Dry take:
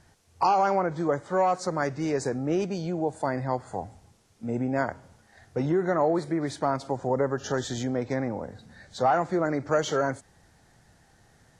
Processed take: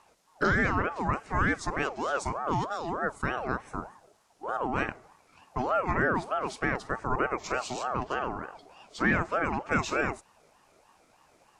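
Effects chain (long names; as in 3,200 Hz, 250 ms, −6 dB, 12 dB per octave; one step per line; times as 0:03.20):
ring modulator whose carrier an LFO sweeps 760 Hz, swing 35%, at 3.3 Hz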